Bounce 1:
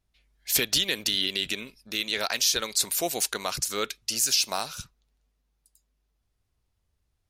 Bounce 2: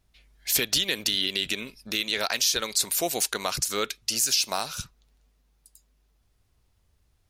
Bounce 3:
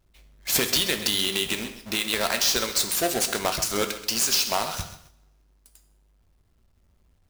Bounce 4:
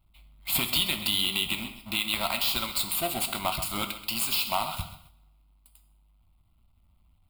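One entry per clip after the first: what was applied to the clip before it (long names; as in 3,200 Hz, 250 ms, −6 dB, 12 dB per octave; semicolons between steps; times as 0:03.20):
downward compressor 1.5 to 1, threshold −43 dBFS, peak gain reduction 9 dB; level +8 dB
each half-wave held at its own peak; coupled-rooms reverb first 0.65 s, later 1.7 s, from −27 dB, DRR 7 dB; feedback echo at a low word length 131 ms, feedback 35%, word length 7 bits, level −12.5 dB; level −2.5 dB
phaser with its sweep stopped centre 1,700 Hz, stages 6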